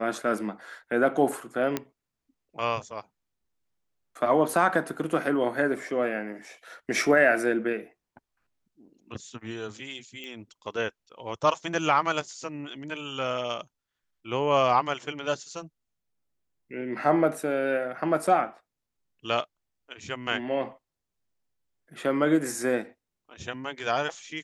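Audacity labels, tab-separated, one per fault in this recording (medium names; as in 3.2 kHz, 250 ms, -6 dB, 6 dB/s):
1.770000	1.770000	pop -12 dBFS
10.240000	10.240000	pop -26 dBFS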